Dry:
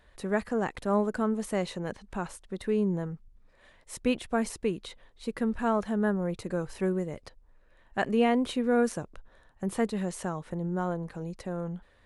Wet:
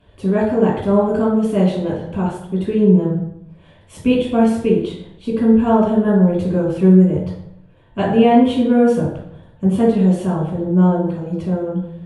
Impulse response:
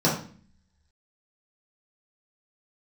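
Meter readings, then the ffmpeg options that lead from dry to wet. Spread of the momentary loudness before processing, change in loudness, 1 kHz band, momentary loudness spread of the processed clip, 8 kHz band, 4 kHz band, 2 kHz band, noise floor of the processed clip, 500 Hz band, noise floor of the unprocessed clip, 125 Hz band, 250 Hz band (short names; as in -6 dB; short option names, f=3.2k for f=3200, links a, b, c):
12 LU, +14.5 dB, +11.0 dB, 12 LU, n/a, +8.0 dB, +4.5 dB, -48 dBFS, +13.0 dB, -61 dBFS, +17.5 dB, +15.5 dB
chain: -filter_complex "[1:a]atrim=start_sample=2205,asetrate=26019,aresample=44100[a];[0:a][a]afir=irnorm=-1:irlink=0,volume=-9dB"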